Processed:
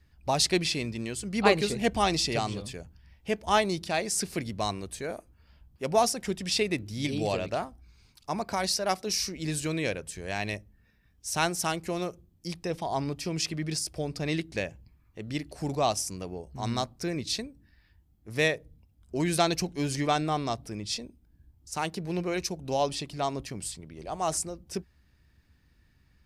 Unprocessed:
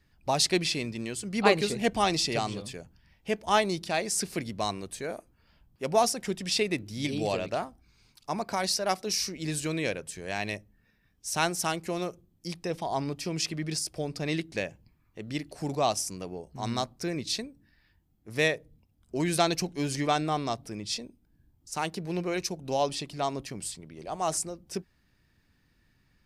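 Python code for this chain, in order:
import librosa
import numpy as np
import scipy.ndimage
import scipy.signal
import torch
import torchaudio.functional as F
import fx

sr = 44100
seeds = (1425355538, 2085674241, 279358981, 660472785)

y = fx.peak_eq(x, sr, hz=65.0, db=11.0, octaves=0.92)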